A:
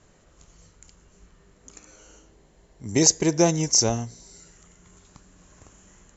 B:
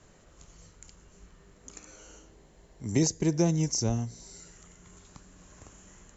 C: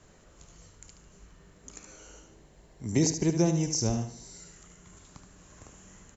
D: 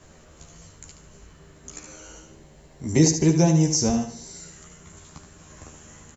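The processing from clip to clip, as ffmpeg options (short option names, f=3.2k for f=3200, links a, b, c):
-filter_complex "[0:a]acrossover=split=280[a][b];[b]acompressor=threshold=-38dB:ratio=2[c];[a][c]amix=inputs=2:normalize=0"
-af "aecho=1:1:74|148|222|296:0.376|0.147|0.0572|0.0223"
-filter_complex "[0:a]asplit=2[a][b];[b]adelay=13,volume=-3dB[c];[a][c]amix=inputs=2:normalize=0,volume=5dB"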